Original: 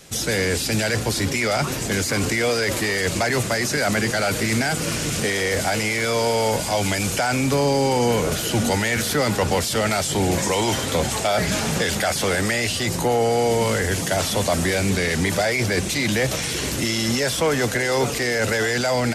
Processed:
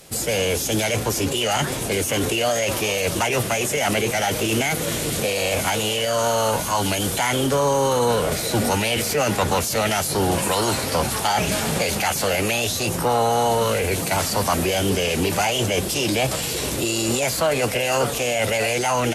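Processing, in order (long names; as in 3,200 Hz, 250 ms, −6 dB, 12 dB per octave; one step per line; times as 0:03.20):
formants moved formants +5 semitones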